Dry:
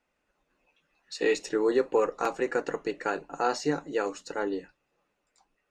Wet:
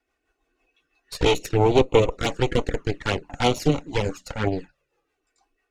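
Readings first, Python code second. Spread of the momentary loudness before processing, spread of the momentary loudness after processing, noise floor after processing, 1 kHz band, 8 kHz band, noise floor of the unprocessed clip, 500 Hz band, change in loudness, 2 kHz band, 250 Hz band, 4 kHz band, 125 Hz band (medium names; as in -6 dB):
8 LU, 10 LU, -78 dBFS, +4.5 dB, +5.5 dB, -78 dBFS, +5.0 dB, +6.0 dB, +3.5 dB, +6.5 dB, +12.5 dB, +22.0 dB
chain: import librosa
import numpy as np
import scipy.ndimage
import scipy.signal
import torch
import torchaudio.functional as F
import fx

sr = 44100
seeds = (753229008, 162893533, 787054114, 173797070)

y = fx.cheby_harmonics(x, sr, harmonics=(6,), levels_db=(-8,), full_scale_db=-13.0)
y = fx.rotary(y, sr, hz=6.0)
y = fx.env_flanger(y, sr, rest_ms=2.7, full_db=-23.0)
y = y * librosa.db_to_amplitude(7.0)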